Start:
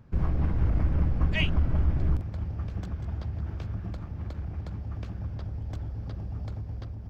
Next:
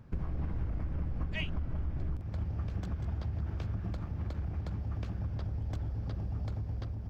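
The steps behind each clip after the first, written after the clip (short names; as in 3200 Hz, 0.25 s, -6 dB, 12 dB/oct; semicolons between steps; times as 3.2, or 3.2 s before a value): compressor 12:1, threshold -30 dBFS, peak gain reduction 12.5 dB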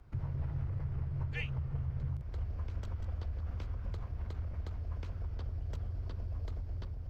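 frequency shift -150 Hz; gain -2.5 dB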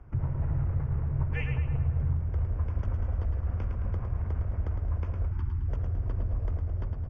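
running mean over 11 samples; on a send: feedback echo 0.108 s, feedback 46%, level -6 dB; on the sum: spectral gain 5.31–5.68, 370–810 Hz -25 dB; gain +7.5 dB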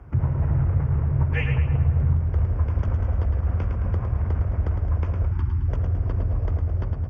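HPF 47 Hz; Doppler distortion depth 0.16 ms; gain +8 dB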